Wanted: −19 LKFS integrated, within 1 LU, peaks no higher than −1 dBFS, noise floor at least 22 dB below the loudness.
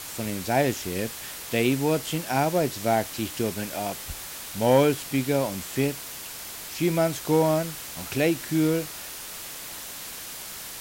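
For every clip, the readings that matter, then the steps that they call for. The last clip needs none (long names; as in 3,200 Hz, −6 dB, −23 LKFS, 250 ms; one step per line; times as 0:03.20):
background noise floor −38 dBFS; target noise floor −49 dBFS; integrated loudness −26.5 LKFS; sample peak −7.0 dBFS; target loudness −19.0 LKFS
→ noise reduction from a noise print 11 dB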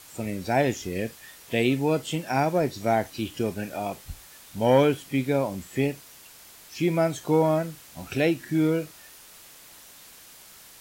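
background noise floor −49 dBFS; integrated loudness −26.0 LKFS; sample peak −7.0 dBFS; target loudness −19.0 LKFS
→ level +7 dB
brickwall limiter −1 dBFS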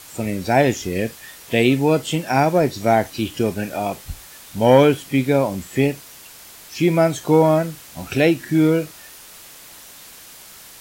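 integrated loudness −19.0 LKFS; sample peak −1.0 dBFS; background noise floor −42 dBFS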